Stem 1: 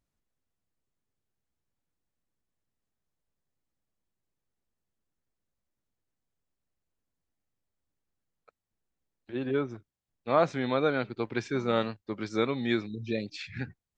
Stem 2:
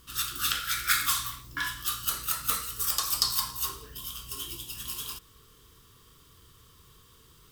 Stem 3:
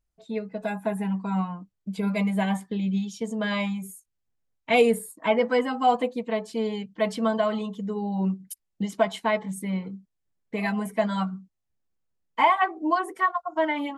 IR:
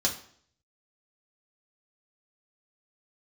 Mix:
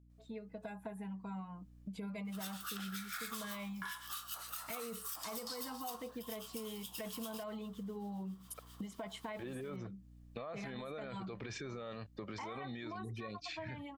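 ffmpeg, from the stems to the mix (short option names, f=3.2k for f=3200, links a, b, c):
-filter_complex "[0:a]aecho=1:1:1.7:0.34,acompressor=threshold=-28dB:ratio=6,adelay=100,volume=2.5dB[a];[1:a]highpass=f=730:t=q:w=4.6,acrossover=split=1400[b][c];[b]aeval=exprs='val(0)*(1-0.7/2+0.7/2*cos(2*PI*7.5*n/s))':c=same[d];[c]aeval=exprs='val(0)*(1-0.7/2-0.7/2*cos(2*PI*7.5*n/s))':c=same[e];[d][e]amix=inputs=2:normalize=0,alimiter=limit=-20dB:level=0:latency=1:release=72,adelay=2250,volume=1dB[f];[2:a]aeval=exprs='val(0)+0.00282*(sin(2*PI*60*n/s)+sin(2*PI*2*60*n/s)/2+sin(2*PI*3*60*n/s)/3+sin(2*PI*4*60*n/s)/4+sin(2*PI*5*60*n/s)/5)':c=same,volume=-11dB[g];[a][g]amix=inputs=2:normalize=0,dynaudnorm=f=100:g=31:m=6dB,alimiter=level_in=2dB:limit=-24dB:level=0:latency=1:release=18,volume=-2dB,volume=0dB[h];[f][h]amix=inputs=2:normalize=0,acompressor=threshold=-43dB:ratio=4"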